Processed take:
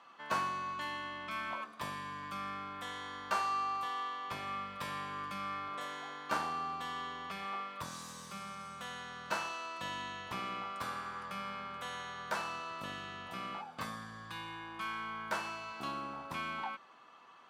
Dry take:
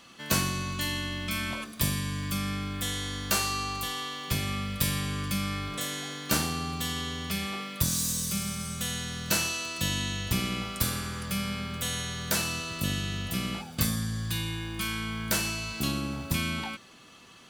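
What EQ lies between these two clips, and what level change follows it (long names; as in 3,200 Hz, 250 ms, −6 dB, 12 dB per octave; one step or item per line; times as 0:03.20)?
resonant band-pass 1,000 Hz, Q 2
+2.5 dB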